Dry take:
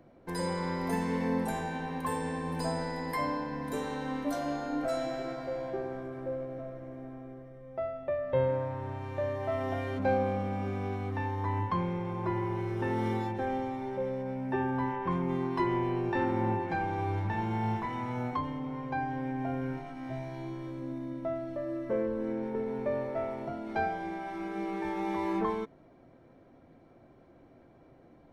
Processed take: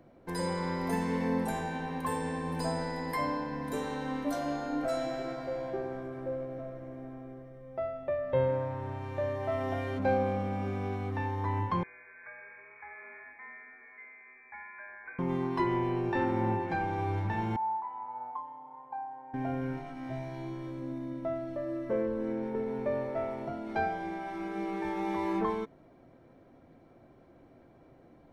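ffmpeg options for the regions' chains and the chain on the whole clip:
-filter_complex "[0:a]asettb=1/sr,asplit=3[a][b][c];[a]atrim=end=11.834[d];[b]atrim=start=11.83:end=15.19,asetpts=PTS-STARTPTS,afade=t=in:d=0.004:c=qsin,afade=t=out:st=3.356:d=0.004:c=qsin,aderivative,acontrast=31,lowpass=f=2.2k:t=q:w=0.5098,lowpass=f=2.2k:t=q:w=0.6013,lowpass=f=2.2k:t=q:w=0.9,lowpass=f=2.2k:t=q:w=2.563,afreqshift=-2600[e];[c]atrim=start=15.186[f];[d][e]acrossfade=d=0.004:c1=hsin:c2=qsin[g];[g][f]acrossfade=d=0.004:c1=qsin:c2=hsin,asettb=1/sr,asplit=3[h][i][j];[h]atrim=end=17.564[k];[i]atrim=start=17.56:end=19.34,asetpts=PTS-STARTPTS,afade=t=in:d=0.004:c=qsin,afade=t=out:st=1.776:d=0.004:c=qsin,acontrast=33,bandpass=f=890:t=q:w=11[l];[j]atrim=start=19.336[m];[k][l]acrossfade=d=0.004:c1=hsin:c2=qsin[n];[n][m]acrossfade=d=0.004:c1=qsin:c2=hsin"

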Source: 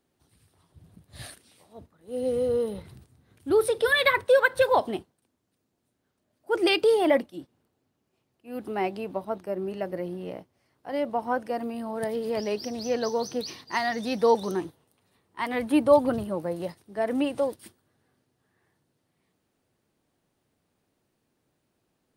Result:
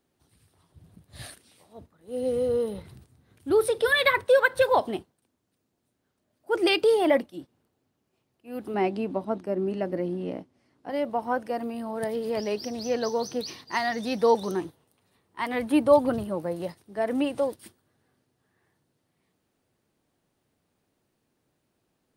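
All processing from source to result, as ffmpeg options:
-filter_complex "[0:a]asettb=1/sr,asplit=3[a][b][c];[a]atrim=end=8.744[d];[b]atrim=start=8.74:end=10.9,asetpts=PTS-STARTPTS,afade=t=in:d=0.004:c=qsin,afade=t=out:st=2.156:d=0.004:c=qsin,lowpass=9.2k,equalizer=f=260:t=o:w=0.9:g=9.5[e];[c]atrim=start=10.896[f];[d][e]acrossfade=d=0.004:c1=hsin:c2=qsin[g];[g][f]acrossfade=d=0.004:c1=qsin:c2=hsin"

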